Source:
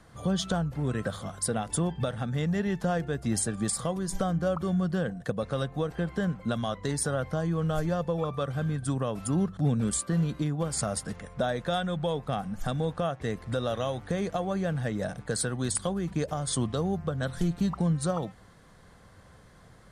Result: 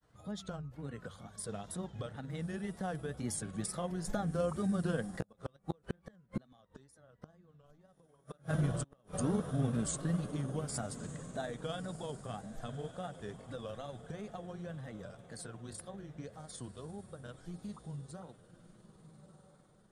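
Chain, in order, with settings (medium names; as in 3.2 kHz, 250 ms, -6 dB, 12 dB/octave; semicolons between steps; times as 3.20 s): Doppler pass-by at 6.98 s, 5 m/s, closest 4.4 m; wow and flutter 130 cents; echo that smears into a reverb 1237 ms, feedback 41%, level -13 dB; inverted gate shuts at -25 dBFS, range -36 dB; granulator 100 ms, grains 20 per s, spray 15 ms, pitch spread up and down by 0 st; trim +4.5 dB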